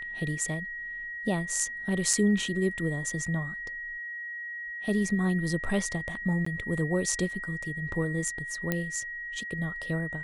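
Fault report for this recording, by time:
whistle 1,900 Hz −35 dBFS
0:02.13: drop-out 3.4 ms
0:06.45–0:06.46: drop-out 14 ms
0:08.72: click −13 dBFS

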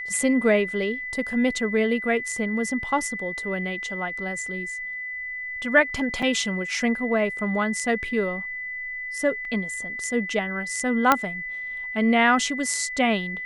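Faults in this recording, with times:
whistle 2,000 Hz −30 dBFS
0:06.22–0:06.23: drop-out 5.2 ms
0:09.45: drop-out 2 ms
0:11.12: click −3 dBFS

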